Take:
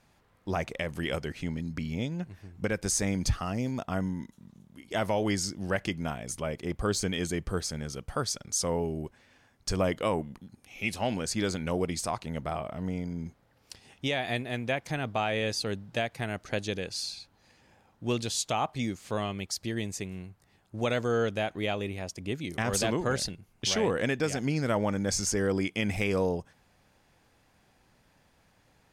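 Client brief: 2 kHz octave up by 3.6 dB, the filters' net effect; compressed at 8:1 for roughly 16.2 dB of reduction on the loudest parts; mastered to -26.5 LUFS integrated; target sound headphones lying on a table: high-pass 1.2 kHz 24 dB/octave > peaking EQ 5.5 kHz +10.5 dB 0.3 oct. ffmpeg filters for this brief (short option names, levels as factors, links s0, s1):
-af "equalizer=f=2000:t=o:g=4.5,acompressor=threshold=0.0112:ratio=8,highpass=f=1200:w=0.5412,highpass=f=1200:w=1.3066,equalizer=f=5500:t=o:w=0.3:g=10.5,volume=7.08"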